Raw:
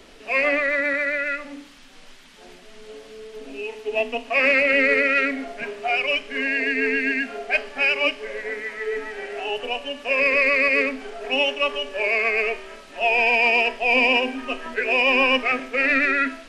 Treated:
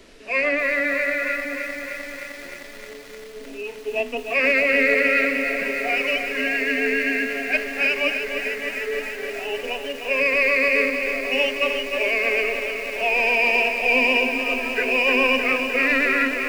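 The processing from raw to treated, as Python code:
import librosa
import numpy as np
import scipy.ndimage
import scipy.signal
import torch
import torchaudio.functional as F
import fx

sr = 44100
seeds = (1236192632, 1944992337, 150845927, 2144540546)

y = fx.graphic_eq_31(x, sr, hz=(800, 1250, 3150), db=(-7, -4, -4))
y = fx.echo_crushed(y, sr, ms=306, feedback_pct=80, bits=7, wet_db=-7.0)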